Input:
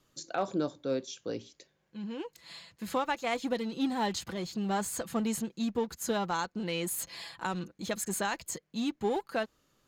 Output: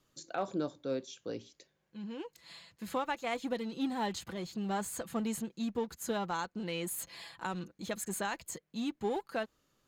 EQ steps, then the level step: dynamic EQ 5300 Hz, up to -4 dB, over -52 dBFS, Q 2; -3.5 dB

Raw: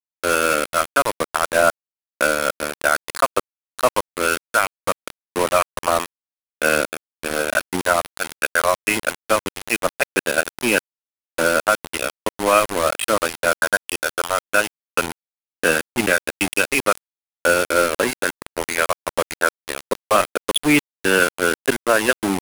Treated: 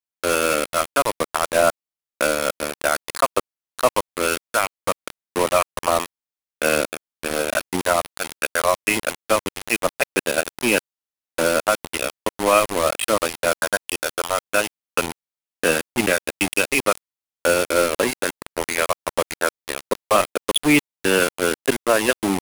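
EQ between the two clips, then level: dynamic EQ 1500 Hz, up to -6 dB, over -34 dBFS, Q 4; 0.0 dB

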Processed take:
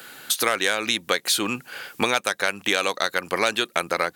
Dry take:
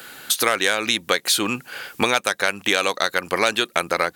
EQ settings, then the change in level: HPF 78 Hz; -2.5 dB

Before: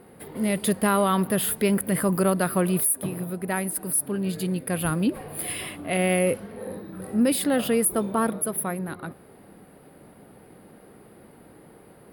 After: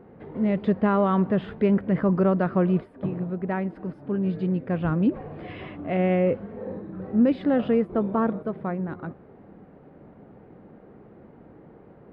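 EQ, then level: air absorption 190 m; tape spacing loss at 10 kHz 37 dB; +3.0 dB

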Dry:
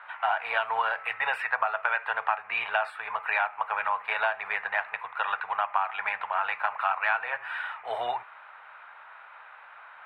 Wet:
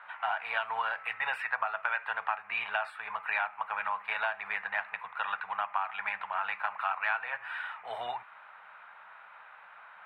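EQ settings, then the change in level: bell 190 Hz +10 dB 0.41 oct; dynamic EQ 430 Hz, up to -6 dB, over -44 dBFS, Q 0.85; -3.5 dB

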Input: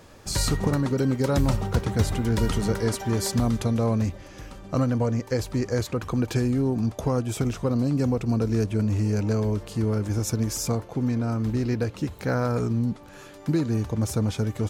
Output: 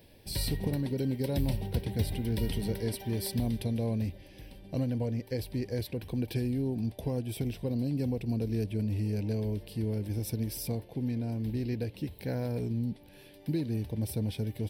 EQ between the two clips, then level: high shelf 5800 Hz +10 dB; fixed phaser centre 3000 Hz, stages 4; -7.0 dB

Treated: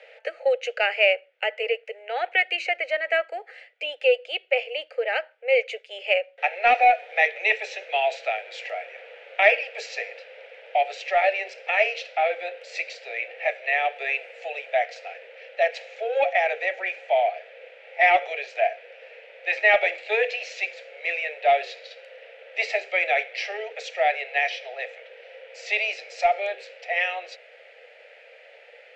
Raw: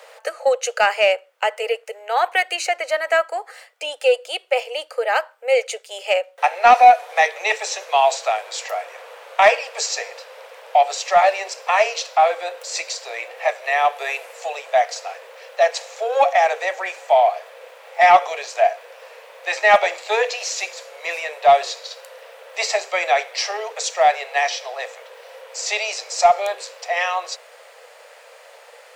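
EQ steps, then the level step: synth low-pass 2400 Hz, resonance Q 2.3; fixed phaser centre 440 Hz, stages 4; -3.5 dB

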